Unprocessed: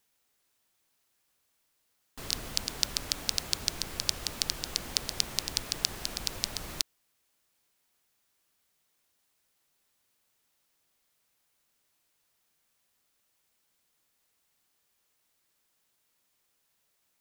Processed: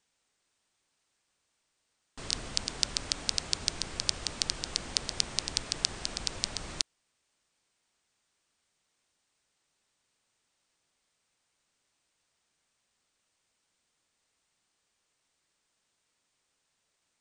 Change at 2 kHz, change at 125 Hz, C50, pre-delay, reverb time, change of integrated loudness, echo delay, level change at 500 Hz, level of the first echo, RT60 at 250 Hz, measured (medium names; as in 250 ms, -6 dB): 0.0 dB, 0.0 dB, no reverb, no reverb, no reverb, -0.5 dB, no echo, 0.0 dB, no echo, no reverb